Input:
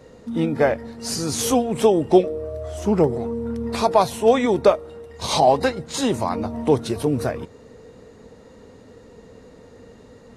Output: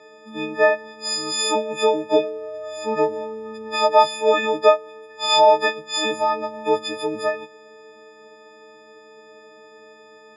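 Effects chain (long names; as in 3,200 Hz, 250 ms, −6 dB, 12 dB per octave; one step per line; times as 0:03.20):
every partial snapped to a pitch grid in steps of 6 semitones
band-pass filter 430–3,400 Hz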